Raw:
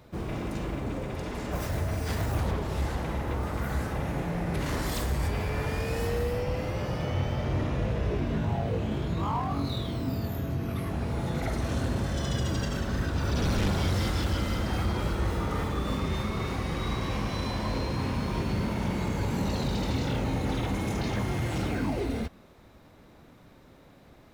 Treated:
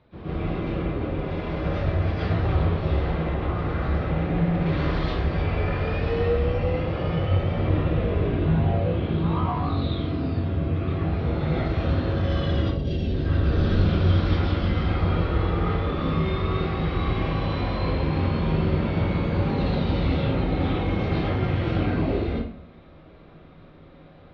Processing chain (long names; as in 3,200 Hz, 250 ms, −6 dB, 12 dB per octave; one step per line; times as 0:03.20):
Butterworth low-pass 4,100 Hz 36 dB per octave
0:12.57–0:14.76: three-band delay without the direct sound lows, highs, mids 160/570 ms, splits 680/2,400 Hz
convolution reverb RT60 0.55 s, pre-delay 110 ms, DRR −10 dB
level −6.5 dB